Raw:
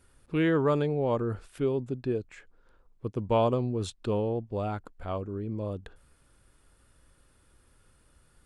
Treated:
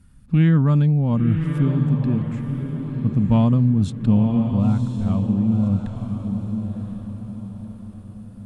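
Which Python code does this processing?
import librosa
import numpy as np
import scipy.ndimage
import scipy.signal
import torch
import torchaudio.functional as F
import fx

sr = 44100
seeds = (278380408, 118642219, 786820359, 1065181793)

y = fx.low_shelf_res(x, sr, hz=290.0, db=12.0, q=3.0)
y = fx.cheby_harmonics(y, sr, harmonics=(6,), levels_db=(-35,), full_scale_db=-5.0)
y = fx.echo_diffused(y, sr, ms=1024, feedback_pct=42, wet_db=-6.0)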